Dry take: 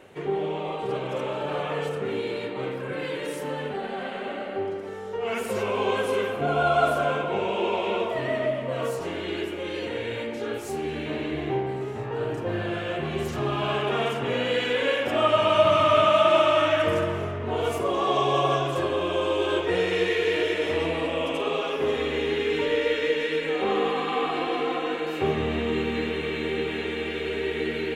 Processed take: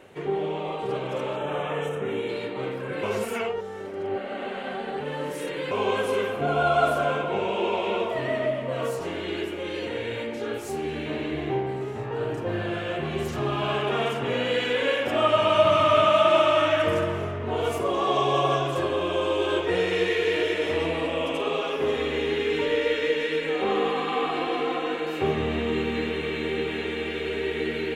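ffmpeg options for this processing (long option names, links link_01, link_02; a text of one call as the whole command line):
ffmpeg -i in.wav -filter_complex "[0:a]asettb=1/sr,asplit=3[link_01][link_02][link_03];[link_01]atrim=end=1.364[link_04];[link_02]atrim=start=1.36:end=2.29,asetpts=PTS-STARTPTS,afade=type=in:duration=0.004:curve=qsin,afade=type=out:start_time=0.926:duration=0.004:curve=qsin,asuperstop=centerf=4600:order=4:qfactor=2.3[link_05];[link_03]atrim=start=2.286[link_06];[link_04][link_05]acrossfade=duration=0.004:curve1=hsin:curve2=qsin[link_07];[link_07][link_06]acrossfade=duration=0.004:curve1=qsin:curve2=hsin,asplit=3[link_08][link_09][link_10];[link_08]atrim=end=3.032[link_11];[link_09]atrim=start=3.028:end=5.712,asetpts=PTS-STARTPTS,areverse[link_12];[link_10]atrim=start=5.708[link_13];[link_11][link_12]acrossfade=duration=0.004:curve1=hsin:curve2=hsin[link_14];[link_14][link_13]acrossfade=duration=0.004:curve1=hsin:curve2=hsin" out.wav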